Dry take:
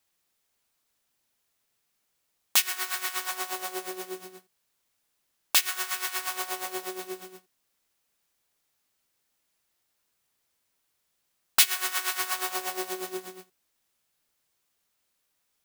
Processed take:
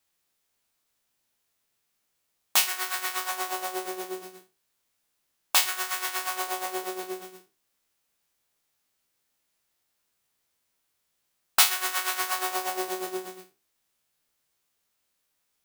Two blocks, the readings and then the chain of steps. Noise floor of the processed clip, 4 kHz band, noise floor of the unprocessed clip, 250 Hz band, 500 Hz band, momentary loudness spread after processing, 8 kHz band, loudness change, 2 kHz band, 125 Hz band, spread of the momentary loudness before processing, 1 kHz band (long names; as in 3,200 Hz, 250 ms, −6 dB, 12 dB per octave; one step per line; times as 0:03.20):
−77 dBFS, +0.5 dB, −77 dBFS, +2.5 dB, +3.0 dB, 15 LU, +0.5 dB, +1.0 dB, +1.0 dB, can't be measured, 16 LU, +4.0 dB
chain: peak hold with a decay on every bin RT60 0.30 s
dynamic equaliser 650 Hz, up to +6 dB, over −46 dBFS, Q 0.73
level −1.5 dB